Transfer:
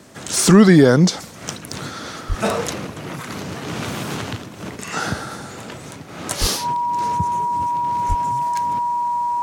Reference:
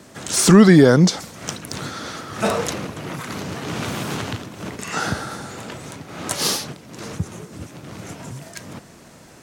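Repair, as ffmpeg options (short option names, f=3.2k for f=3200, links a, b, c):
-filter_complex "[0:a]bandreject=f=960:w=30,asplit=3[a][b][c];[a]afade=t=out:st=2.28:d=0.02[d];[b]highpass=f=140:w=0.5412,highpass=f=140:w=1.3066,afade=t=in:st=2.28:d=0.02,afade=t=out:st=2.4:d=0.02[e];[c]afade=t=in:st=2.4:d=0.02[f];[d][e][f]amix=inputs=3:normalize=0,asplit=3[g][h][i];[g]afade=t=out:st=6.4:d=0.02[j];[h]highpass=f=140:w=0.5412,highpass=f=140:w=1.3066,afade=t=in:st=6.4:d=0.02,afade=t=out:st=6.52:d=0.02[k];[i]afade=t=in:st=6.52:d=0.02[l];[j][k][l]amix=inputs=3:normalize=0,asplit=3[m][n][o];[m]afade=t=out:st=8.08:d=0.02[p];[n]highpass=f=140:w=0.5412,highpass=f=140:w=1.3066,afade=t=in:st=8.08:d=0.02,afade=t=out:st=8.2:d=0.02[q];[o]afade=t=in:st=8.2:d=0.02[r];[p][q][r]amix=inputs=3:normalize=0"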